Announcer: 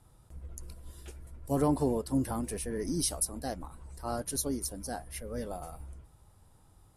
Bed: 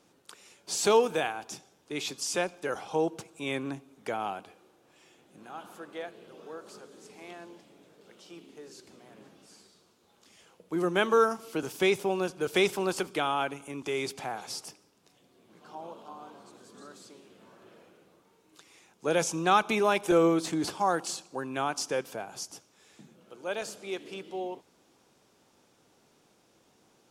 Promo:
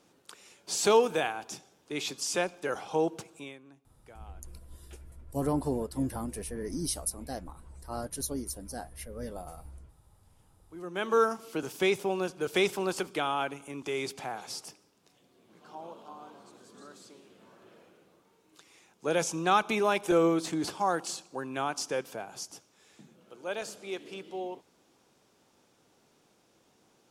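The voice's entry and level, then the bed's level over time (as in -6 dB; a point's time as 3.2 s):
3.85 s, -2.0 dB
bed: 3.36 s 0 dB
3.58 s -20 dB
10.62 s -20 dB
11.17 s -1.5 dB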